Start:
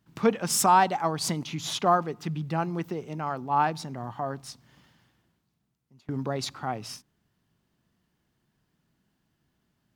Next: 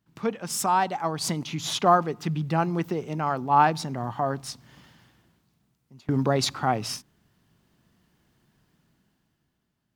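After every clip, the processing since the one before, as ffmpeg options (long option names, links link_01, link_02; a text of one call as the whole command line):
ffmpeg -i in.wav -af "dynaudnorm=framelen=170:gausssize=13:maxgain=13dB,volume=-5dB" out.wav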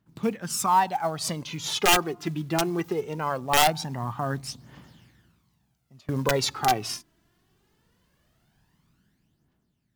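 ffmpeg -i in.wav -af "aeval=exprs='(mod(3.55*val(0)+1,2)-1)/3.55':channel_layout=same,aphaser=in_gain=1:out_gain=1:delay=3.1:decay=0.54:speed=0.21:type=triangular,acrusher=bits=7:mode=log:mix=0:aa=0.000001,volume=-1.5dB" out.wav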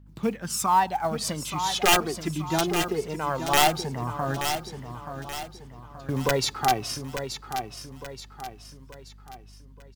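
ffmpeg -i in.wav -filter_complex "[0:a]aeval=exprs='val(0)+0.00316*(sin(2*PI*50*n/s)+sin(2*PI*2*50*n/s)/2+sin(2*PI*3*50*n/s)/3+sin(2*PI*4*50*n/s)/4+sin(2*PI*5*50*n/s)/5)':channel_layout=same,asplit=2[link_01][link_02];[link_02]aecho=0:1:878|1756|2634|3512|4390:0.376|0.162|0.0695|0.0299|0.0128[link_03];[link_01][link_03]amix=inputs=2:normalize=0" out.wav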